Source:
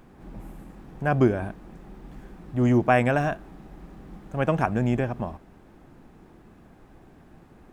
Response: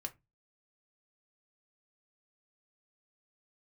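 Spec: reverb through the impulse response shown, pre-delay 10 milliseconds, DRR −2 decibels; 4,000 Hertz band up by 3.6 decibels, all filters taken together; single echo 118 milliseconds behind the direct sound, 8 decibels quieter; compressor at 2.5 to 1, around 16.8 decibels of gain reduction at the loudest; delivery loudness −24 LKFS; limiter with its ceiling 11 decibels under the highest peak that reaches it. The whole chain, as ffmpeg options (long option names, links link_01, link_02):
-filter_complex "[0:a]equalizer=frequency=4000:width_type=o:gain=5.5,acompressor=threshold=-41dB:ratio=2.5,alimiter=level_in=9dB:limit=-24dB:level=0:latency=1,volume=-9dB,aecho=1:1:118:0.398,asplit=2[link_01][link_02];[1:a]atrim=start_sample=2205,adelay=10[link_03];[link_02][link_03]afir=irnorm=-1:irlink=0,volume=4dB[link_04];[link_01][link_04]amix=inputs=2:normalize=0,volume=17dB"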